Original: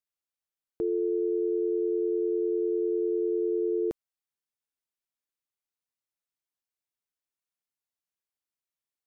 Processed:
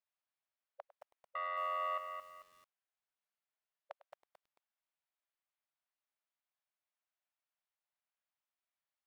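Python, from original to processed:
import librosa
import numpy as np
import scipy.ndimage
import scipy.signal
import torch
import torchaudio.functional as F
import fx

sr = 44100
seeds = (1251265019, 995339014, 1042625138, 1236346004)

y = fx.leveller(x, sr, passes=2, at=(1.35, 1.98))
y = fx.brickwall_highpass(y, sr, low_hz=550.0)
y = fx.air_absorb(y, sr, metres=300.0)
y = y + 10.0 ** (-16.5 / 20.0) * np.pad(y, (int(102 * sr / 1000.0), 0))[:len(y)]
y = fx.echo_crushed(y, sr, ms=221, feedback_pct=35, bits=11, wet_db=-6.5)
y = y * librosa.db_to_amplitude(3.5)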